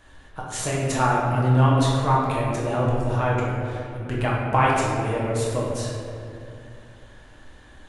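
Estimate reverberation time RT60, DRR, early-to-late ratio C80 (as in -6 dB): 2.5 s, -5.5 dB, 1.5 dB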